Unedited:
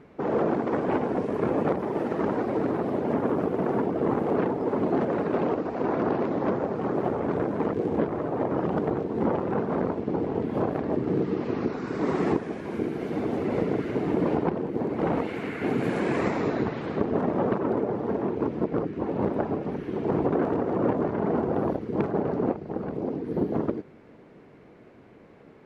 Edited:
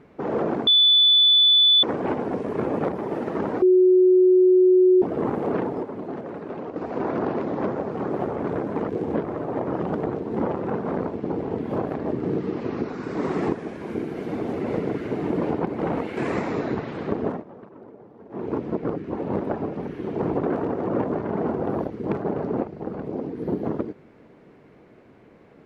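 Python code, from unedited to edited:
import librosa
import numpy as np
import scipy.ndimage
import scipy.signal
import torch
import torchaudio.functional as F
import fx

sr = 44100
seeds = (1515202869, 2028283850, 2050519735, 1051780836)

y = fx.edit(x, sr, fx.insert_tone(at_s=0.67, length_s=1.16, hz=3480.0, db=-12.5),
    fx.bleep(start_s=2.46, length_s=1.4, hz=368.0, db=-12.0),
    fx.clip_gain(start_s=4.67, length_s=0.93, db=-8.0),
    fx.cut(start_s=14.51, length_s=0.36),
    fx.cut(start_s=15.37, length_s=0.69),
    fx.fade_down_up(start_s=17.16, length_s=1.19, db=-19.0, fade_s=0.17), tone=tone)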